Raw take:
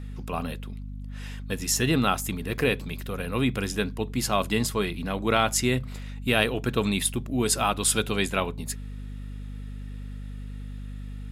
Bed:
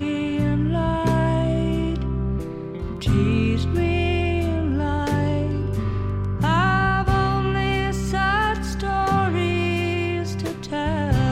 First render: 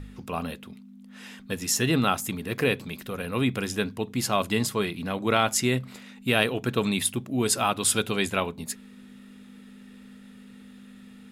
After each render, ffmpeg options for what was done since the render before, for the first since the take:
ffmpeg -i in.wav -af "bandreject=frequency=50:width_type=h:width=4,bandreject=frequency=100:width_type=h:width=4,bandreject=frequency=150:width_type=h:width=4" out.wav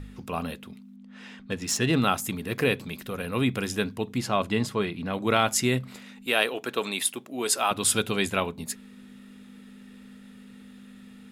ffmpeg -i in.wav -filter_complex "[0:a]asettb=1/sr,asplit=3[link_01][link_02][link_03];[link_01]atrim=end=0.964[link_04];[link_02]atrim=start=0.96:end=1.97,asetpts=PTS-STARTPTS,afade=type=in:duration=0.004:curve=qsin,afade=type=out:start_time=1.006:duration=0.004:curve=qsin,adynamicsmooth=sensitivity=4:basefreq=5200[link_05];[link_03]atrim=start=1.966[link_06];[link_04][link_05]acrossfade=duration=0.004:curve1=hsin:curve2=qsin[link_07];[link_07][link_06]acrossfade=duration=0.004:curve1=qsin:curve2=hsin,asettb=1/sr,asplit=3[link_08][link_09][link_10];[link_08]atrim=end=4.184[link_11];[link_09]atrim=start=4.18:end=5.13,asetpts=PTS-STARTPTS,afade=type=in:duration=0.004:curve=qsin,afade=type=out:start_time=0.946:duration=0.004:curve=qsin,aemphasis=mode=reproduction:type=50kf[link_12];[link_10]atrim=start=5.126[link_13];[link_11][link_12]acrossfade=duration=0.004:curve1=hsin:curve2=qsin[link_14];[link_14][link_13]acrossfade=duration=0.004:curve1=qsin:curve2=hsin,asettb=1/sr,asplit=3[link_15][link_16][link_17];[link_15]atrim=end=6.264[link_18];[link_16]atrim=start=6.26:end=7.71,asetpts=PTS-STARTPTS,afade=type=in:duration=0.004:curve=qsin,afade=type=out:start_time=1.446:duration=0.004:curve=qsin,highpass=390[link_19];[link_17]atrim=start=7.706[link_20];[link_18][link_19]acrossfade=duration=0.004:curve1=hsin:curve2=qsin[link_21];[link_21][link_20]acrossfade=duration=0.004:curve1=qsin:curve2=hsin" out.wav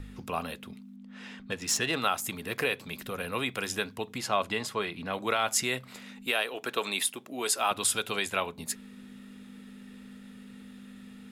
ffmpeg -i in.wav -filter_complex "[0:a]acrossover=split=470|3000[link_01][link_02][link_03];[link_01]acompressor=threshold=-39dB:ratio=6[link_04];[link_04][link_02][link_03]amix=inputs=3:normalize=0,alimiter=limit=-14dB:level=0:latency=1:release=250" out.wav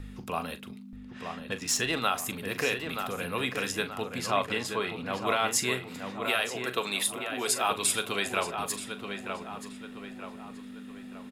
ffmpeg -i in.wav -filter_complex "[0:a]asplit=2[link_01][link_02];[link_02]adelay=40,volume=-12dB[link_03];[link_01][link_03]amix=inputs=2:normalize=0,asplit=2[link_04][link_05];[link_05]adelay=928,lowpass=frequency=2900:poles=1,volume=-6dB,asplit=2[link_06][link_07];[link_07]adelay=928,lowpass=frequency=2900:poles=1,volume=0.47,asplit=2[link_08][link_09];[link_09]adelay=928,lowpass=frequency=2900:poles=1,volume=0.47,asplit=2[link_10][link_11];[link_11]adelay=928,lowpass=frequency=2900:poles=1,volume=0.47,asplit=2[link_12][link_13];[link_13]adelay=928,lowpass=frequency=2900:poles=1,volume=0.47,asplit=2[link_14][link_15];[link_15]adelay=928,lowpass=frequency=2900:poles=1,volume=0.47[link_16];[link_06][link_08][link_10][link_12][link_14][link_16]amix=inputs=6:normalize=0[link_17];[link_04][link_17]amix=inputs=2:normalize=0" out.wav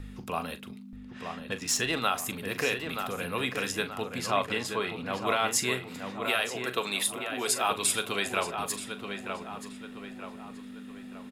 ffmpeg -i in.wav -af anull out.wav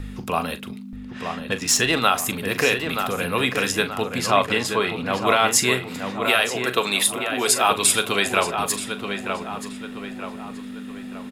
ffmpeg -i in.wav -af "volume=9dB" out.wav

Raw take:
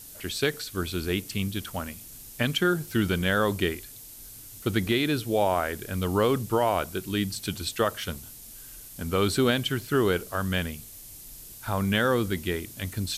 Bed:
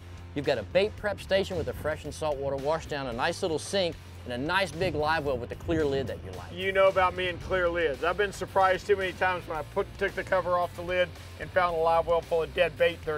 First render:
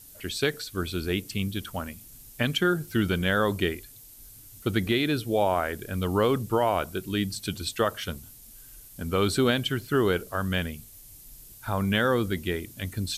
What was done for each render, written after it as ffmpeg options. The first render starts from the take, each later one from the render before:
ffmpeg -i in.wav -af "afftdn=noise_reduction=6:noise_floor=-45" out.wav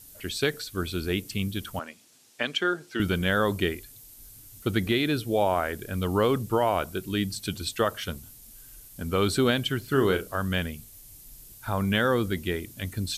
ffmpeg -i in.wav -filter_complex "[0:a]asettb=1/sr,asplit=3[link_01][link_02][link_03];[link_01]atrim=end=1.794[link_04];[link_02]atrim=start=1.79:end=3,asetpts=PTS-STARTPTS,afade=type=in:duration=0.004:curve=qsin,afade=type=out:start_time=1.206:duration=0.004:curve=qsin,highpass=370,lowpass=6300[link_05];[link_03]atrim=start=2.996[link_06];[link_04][link_05]acrossfade=duration=0.004:curve1=hsin:curve2=qsin[link_07];[link_07][link_06]acrossfade=duration=0.004:curve1=qsin:curve2=hsin,asettb=1/sr,asplit=3[link_08][link_09][link_10];[link_08]atrim=end=9.844[link_11];[link_09]atrim=start=9.84:end=10.35,asetpts=PTS-STARTPTS,afade=type=in:duration=0.004:curve=qsin,afade=type=out:start_time=0.506:duration=0.004:curve=qsin,asplit=2[link_12][link_13];[link_13]adelay=37,volume=-8.5dB[link_14];[link_12][link_14]amix=inputs=2:normalize=0,atrim=end_sample=22491[link_15];[link_10]atrim=start=10.346[link_16];[link_11][link_15]acrossfade=duration=0.004:curve1=hsin:curve2=qsin[link_17];[link_17][link_16]acrossfade=duration=0.004:curve1=qsin:curve2=hsin" out.wav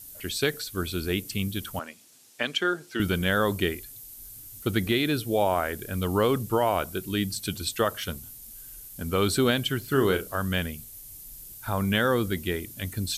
ffmpeg -i in.wav -af "highshelf=frequency=9100:gain=7.5" out.wav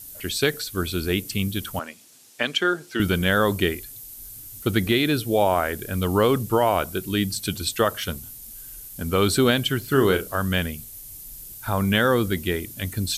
ffmpeg -i in.wav -af "volume=4dB" out.wav

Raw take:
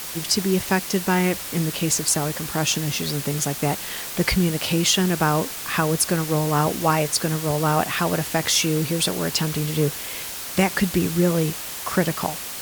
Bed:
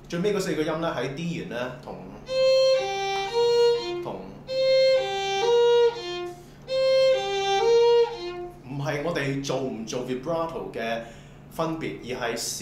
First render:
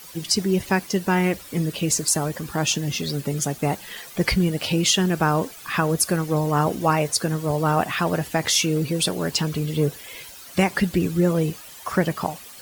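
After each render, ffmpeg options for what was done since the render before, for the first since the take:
ffmpeg -i in.wav -af "afftdn=noise_reduction=13:noise_floor=-33" out.wav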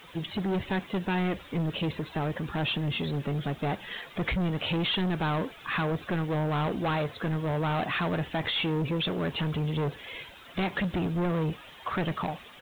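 ffmpeg -i in.wav -af "aresample=8000,asoftclip=type=tanh:threshold=-25dB,aresample=44100,acrusher=bits=9:mix=0:aa=0.000001" out.wav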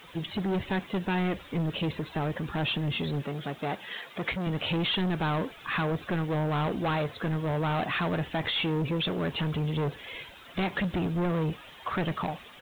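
ffmpeg -i in.wav -filter_complex "[0:a]asettb=1/sr,asplit=3[link_01][link_02][link_03];[link_01]atrim=end=3.234[link_04];[link_02]atrim=start=3.23:end=4.47,asetpts=PTS-STARTPTS,afade=type=in:duration=0.004:curve=qsin,afade=type=out:start_time=1.236:duration=0.004:curve=qsin,highpass=frequency=260:poles=1[link_05];[link_03]atrim=start=4.466[link_06];[link_04][link_05]acrossfade=duration=0.004:curve1=hsin:curve2=qsin[link_07];[link_07][link_06]acrossfade=duration=0.004:curve1=qsin:curve2=hsin" out.wav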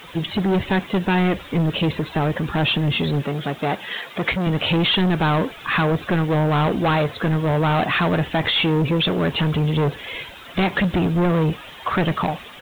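ffmpeg -i in.wav -af "volume=9.5dB" out.wav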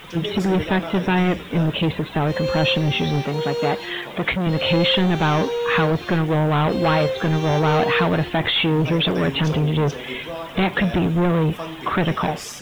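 ffmpeg -i in.wav -i bed.wav -filter_complex "[1:a]volume=-4.5dB[link_01];[0:a][link_01]amix=inputs=2:normalize=0" out.wav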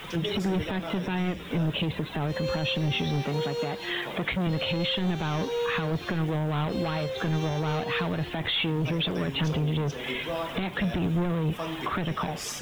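ffmpeg -i in.wav -filter_complex "[0:a]acrossover=split=180|3000[link_01][link_02][link_03];[link_02]acompressor=threshold=-25dB:ratio=2[link_04];[link_01][link_04][link_03]amix=inputs=3:normalize=0,alimiter=limit=-19.5dB:level=0:latency=1:release=267" out.wav

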